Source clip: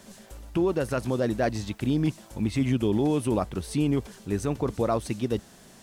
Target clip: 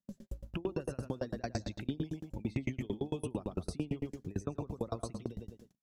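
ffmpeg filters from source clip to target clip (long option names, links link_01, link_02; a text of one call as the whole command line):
ffmpeg -i in.wav -filter_complex "[0:a]bass=frequency=250:gain=3,treble=frequency=4000:gain=6,afftdn=noise_reduction=19:noise_floor=-40,asplit=2[link_01][link_02];[link_02]adelay=101,lowpass=frequency=3900:poles=1,volume=-8dB,asplit=2[link_03][link_04];[link_04]adelay=101,lowpass=frequency=3900:poles=1,volume=0.29,asplit=2[link_05][link_06];[link_06]adelay=101,lowpass=frequency=3900:poles=1,volume=0.29[link_07];[link_01][link_03][link_05][link_07]amix=inputs=4:normalize=0,alimiter=limit=-20dB:level=0:latency=1:release=26,equalizer=frequency=8900:width_type=o:width=0.34:gain=-9.5,acrossover=split=350|2600|5400[link_08][link_09][link_10][link_11];[link_08]acompressor=threshold=-36dB:ratio=4[link_12];[link_09]acompressor=threshold=-40dB:ratio=4[link_13];[link_10]acompressor=threshold=-54dB:ratio=4[link_14];[link_11]acompressor=threshold=-54dB:ratio=4[link_15];[link_12][link_13][link_14][link_15]amix=inputs=4:normalize=0,agate=range=-28dB:threshold=-51dB:ratio=16:detection=peak,aeval=exprs='val(0)*pow(10,-32*if(lt(mod(8.9*n/s,1),2*abs(8.9)/1000),1-mod(8.9*n/s,1)/(2*abs(8.9)/1000),(mod(8.9*n/s,1)-2*abs(8.9)/1000)/(1-2*abs(8.9)/1000))/20)':channel_layout=same,volume=6dB" out.wav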